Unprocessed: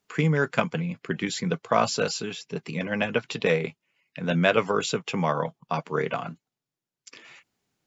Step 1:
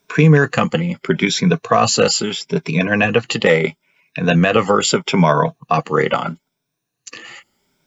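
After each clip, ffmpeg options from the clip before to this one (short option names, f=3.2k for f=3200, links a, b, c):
-af "afftfilt=real='re*pow(10,11/40*sin(2*PI*(1.6*log(max(b,1)*sr/1024/100)/log(2)-(0.76)*(pts-256)/sr)))':imag='im*pow(10,11/40*sin(2*PI*(1.6*log(max(b,1)*sr/1024/100)/log(2)-(0.76)*(pts-256)/sr)))':win_size=1024:overlap=0.75,alimiter=level_in=12dB:limit=-1dB:release=50:level=0:latency=1,volume=-1dB"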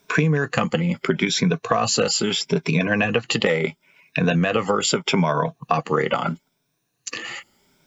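-af "acompressor=threshold=-21dB:ratio=6,volume=4dB"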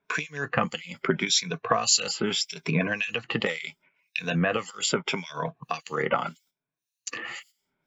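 -filter_complex "[0:a]agate=range=-12dB:threshold=-47dB:ratio=16:detection=peak,tiltshelf=f=970:g=-3.5,acrossover=split=2400[a][b];[a]aeval=exprs='val(0)*(1-1/2+1/2*cos(2*PI*1.8*n/s))':c=same[c];[b]aeval=exprs='val(0)*(1-1/2-1/2*cos(2*PI*1.8*n/s))':c=same[d];[c][d]amix=inputs=2:normalize=0,volume=-1dB"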